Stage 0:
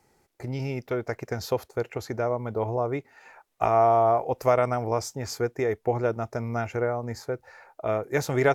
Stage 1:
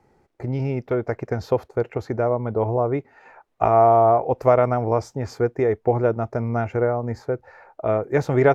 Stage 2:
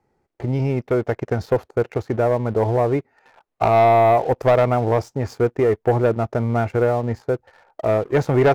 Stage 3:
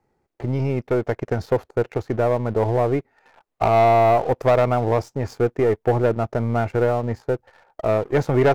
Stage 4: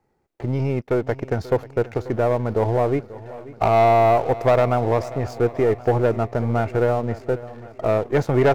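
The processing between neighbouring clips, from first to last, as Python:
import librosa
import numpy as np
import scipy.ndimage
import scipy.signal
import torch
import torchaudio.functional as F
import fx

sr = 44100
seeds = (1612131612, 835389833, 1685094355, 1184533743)

y1 = fx.lowpass(x, sr, hz=1100.0, slope=6)
y1 = y1 * librosa.db_to_amplitude(6.5)
y2 = fx.leveller(y1, sr, passes=2)
y2 = y2 * librosa.db_to_amplitude(-4.0)
y3 = np.where(y2 < 0.0, 10.0 ** (-3.0 / 20.0) * y2, y2)
y4 = fx.echo_feedback(y3, sr, ms=537, feedback_pct=60, wet_db=-17.5)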